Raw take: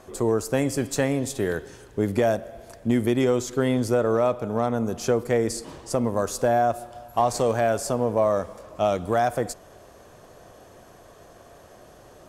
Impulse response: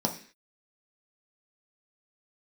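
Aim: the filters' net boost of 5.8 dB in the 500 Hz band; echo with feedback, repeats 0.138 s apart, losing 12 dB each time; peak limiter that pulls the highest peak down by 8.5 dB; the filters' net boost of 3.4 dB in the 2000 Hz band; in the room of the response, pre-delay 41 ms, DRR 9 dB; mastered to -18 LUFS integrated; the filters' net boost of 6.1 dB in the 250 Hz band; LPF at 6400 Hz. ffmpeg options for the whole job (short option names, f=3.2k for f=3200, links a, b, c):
-filter_complex "[0:a]lowpass=6.4k,equalizer=f=250:t=o:g=5.5,equalizer=f=500:t=o:g=5.5,equalizer=f=2k:t=o:g=4,alimiter=limit=-13.5dB:level=0:latency=1,aecho=1:1:138|276|414:0.251|0.0628|0.0157,asplit=2[a][b];[1:a]atrim=start_sample=2205,adelay=41[c];[b][c]afir=irnorm=-1:irlink=0,volume=-17dB[d];[a][d]amix=inputs=2:normalize=0,volume=4.5dB"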